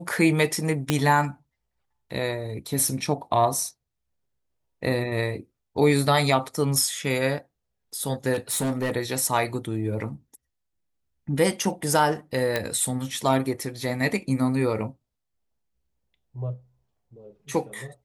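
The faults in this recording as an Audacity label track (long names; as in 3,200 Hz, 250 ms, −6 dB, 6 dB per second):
0.900000	0.900000	click −6 dBFS
8.330000	8.960000	clipping −22 dBFS
12.560000	12.560000	click −10 dBFS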